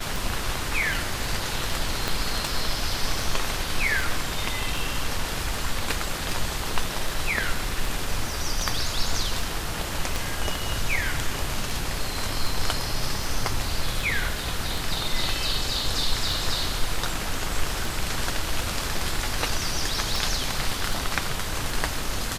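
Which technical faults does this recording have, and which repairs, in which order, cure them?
tick 78 rpm
2.08 pop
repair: de-click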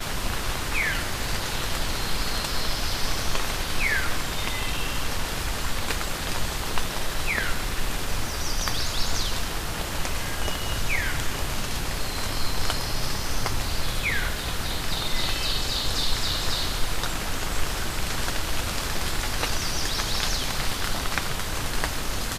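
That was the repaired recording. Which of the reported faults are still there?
2.08 pop

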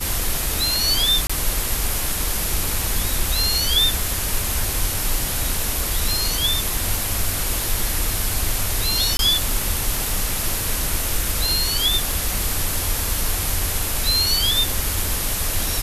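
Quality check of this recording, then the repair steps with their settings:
1.27–1.29 gap 25 ms
9.17–9.19 gap 22 ms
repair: interpolate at 1.27, 25 ms; interpolate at 9.17, 22 ms

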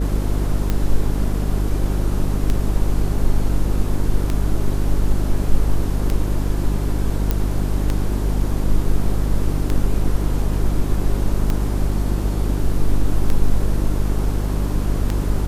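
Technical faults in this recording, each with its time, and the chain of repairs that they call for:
hum 50 Hz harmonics 8 -21 dBFS
tick 33 1/3 rpm -8 dBFS
7.31 pop -6 dBFS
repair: de-click; de-hum 50 Hz, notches 8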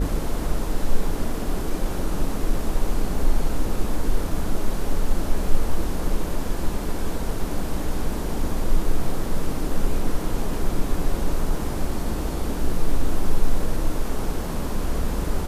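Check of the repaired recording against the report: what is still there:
none

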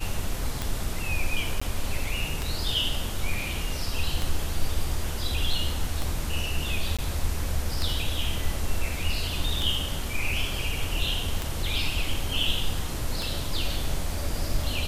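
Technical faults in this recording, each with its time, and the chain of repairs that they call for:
tick 33 1/3 rpm
1.6–1.61 gap 15 ms
6.97–6.99 gap 16 ms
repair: de-click; interpolate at 1.6, 15 ms; interpolate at 6.97, 16 ms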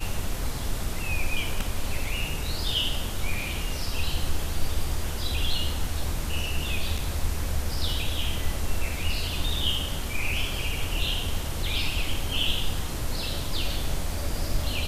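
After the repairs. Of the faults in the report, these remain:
none

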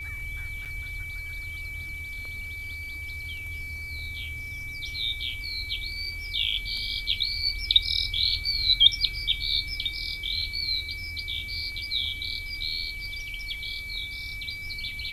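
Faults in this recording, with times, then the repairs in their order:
tone 2300 Hz -35 dBFS
0.65–0.66 gap 7.1 ms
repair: notch 2300 Hz, Q 30; interpolate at 0.65, 7.1 ms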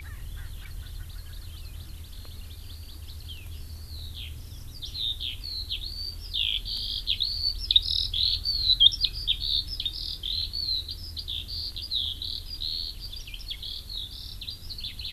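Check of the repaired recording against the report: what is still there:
none

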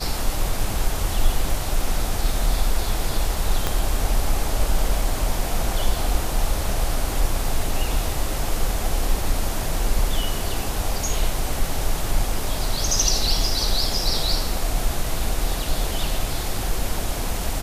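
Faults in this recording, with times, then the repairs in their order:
3.67 pop -7 dBFS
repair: de-click

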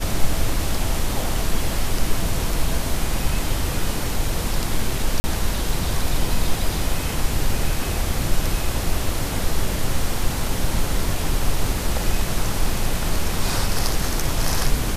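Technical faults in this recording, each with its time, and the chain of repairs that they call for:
5.2–5.24 gap 40 ms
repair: interpolate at 5.2, 40 ms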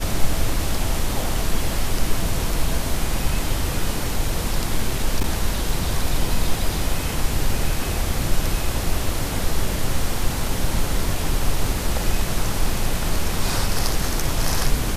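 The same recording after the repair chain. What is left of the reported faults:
none

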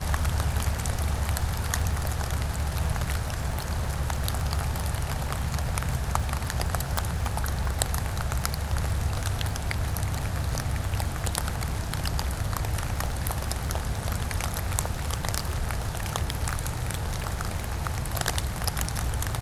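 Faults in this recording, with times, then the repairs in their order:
crackle 38/s -32 dBFS
6.98 pop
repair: de-click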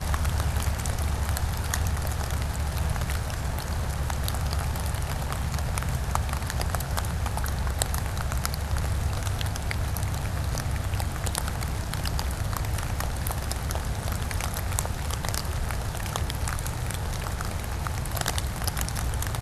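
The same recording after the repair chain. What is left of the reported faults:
none

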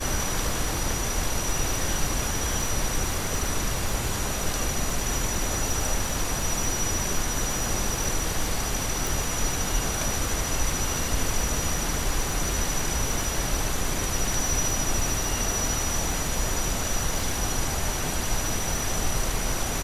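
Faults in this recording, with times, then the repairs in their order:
crackle 33/s -29 dBFS
9.07 pop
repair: de-click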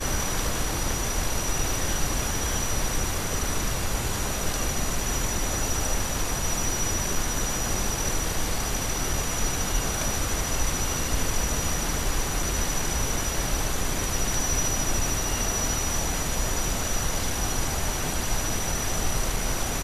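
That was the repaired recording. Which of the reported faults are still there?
none

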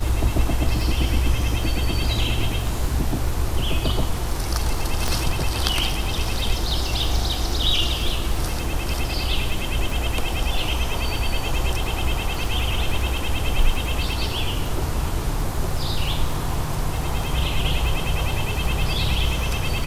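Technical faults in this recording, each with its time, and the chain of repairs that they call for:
crackle 38/s -27 dBFS
5.08 pop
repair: de-click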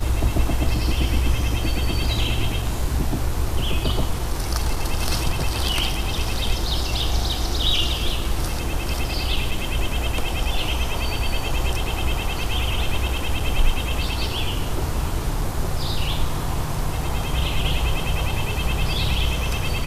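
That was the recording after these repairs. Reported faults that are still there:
5.08 pop

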